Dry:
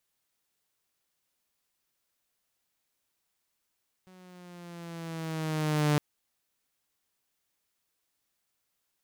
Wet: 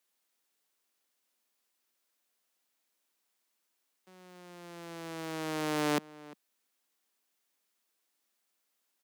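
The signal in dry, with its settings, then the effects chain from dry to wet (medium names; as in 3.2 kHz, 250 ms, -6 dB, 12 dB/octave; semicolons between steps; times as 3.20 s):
gliding synth tone saw, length 1.91 s, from 186 Hz, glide -4 st, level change +31 dB, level -19 dB
steep high-pass 200 Hz 36 dB/octave; echo from a far wall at 60 m, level -20 dB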